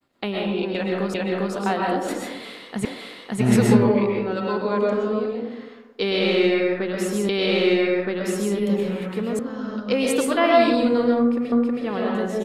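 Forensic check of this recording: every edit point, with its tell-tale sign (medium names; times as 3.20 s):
1.14 s: repeat of the last 0.4 s
2.85 s: repeat of the last 0.56 s
7.29 s: repeat of the last 1.27 s
9.39 s: sound stops dead
11.52 s: repeat of the last 0.32 s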